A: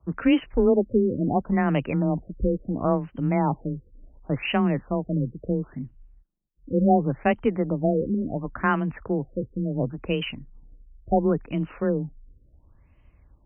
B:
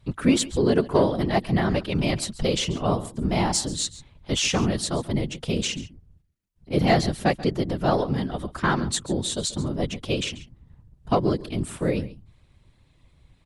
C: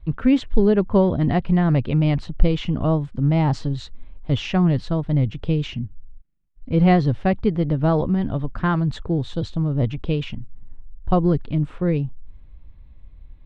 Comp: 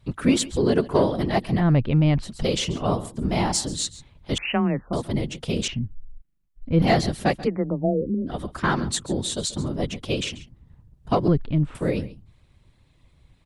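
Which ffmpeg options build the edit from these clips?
-filter_complex "[2:a]asplit=3[a][b][c];[0:a]asplit=2[d][e];[1:a]asplit=6[f][g][h][i][j][k];[f]atrim=end=1.65[l];[a]atrim=start=1.55:end=2.32[m];[g]atrim=start=2.22:end=4.382[n];[d]atrim=start=4.378:end=4.932[o];[h]atrim=start=4.928:end=5.682[p];[b]atrim=start=5.678:end=6.822[q];[i]atrim=start=6.818:end=7.48[r];[e]atrim=start=7.44:end=8.3[s];[j]atrim=start=8.26:end=11.282[t];[c]atrim=start=11.278:end=11.752[u];[k]atrim=start=11.748[v];[l][m]acrossfade=d=0.1:c1=tri:c2=tri[w];[w][n]acrossfade=d=0.1:c1=tri:c2=tri[x];[x][o]acrossfade=d=0.004:c1=hsin:c2=hsin[y];[y][p]acrossfade=d=0.004:c1=hsin:c2=hsin[z];[z][q]acrossfade=d=0.004:c1=hsin:c2=hsin[aa];[aa][r]acrossfade=d=0.004:c1=hsin:c2=hsin[ab];[ab][s]acrossfade=d=0.04:c1=tri:c2=tri[ac];[ac][t]acrossfade=d=0.04:c1=tri:c2=tri[ad];[ad][u]acrossfade=d=0.004:c1=hsin:c2=hsin[ae];[ae][v]acrossfade=d=0.004:c1=hsin:c2=hsin"

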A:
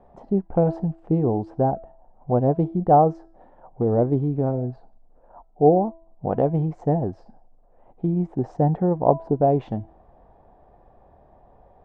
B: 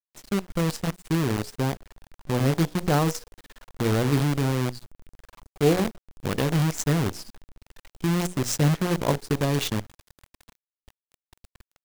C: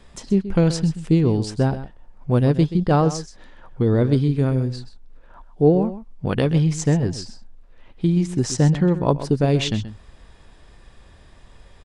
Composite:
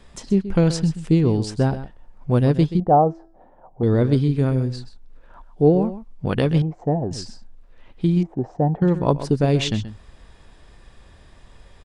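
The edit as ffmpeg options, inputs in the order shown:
-filter_complex "[0:a]asplit=3[a][b][c];[2:a]asplit=4[d][e][f][g];[d]atrim=end=2.802[h];[a]atrim=start=2.798:end=3.832[i];[e]atrim=start=3.828:end=6.622[j];[b]atrim=start=6.618:end=7.112[k];[f]atrim=start=7.108:end=8.232[l];[c]atrim=start=8.228:end=8.822[m];[g]atrim=start=8.818[n];[h][i]acrossfade=d=0.004:c1=hsin:c2=hsin[o];[o][j]acrossfade=d=0.004:c1=hsin:c2=hsin[p];[p][k]acrossfade=d=0.004:c1=hsin:c2=hsin[q];[q][l]acrossfade=d=0.004:c1=hsin:c2=hsin[r];[r][m]acrossfade=d=0.004:c1=hsin:c2=hsin[s];[s][n]acrossfade=d=0.004:c1=hsin:c2=hsin"

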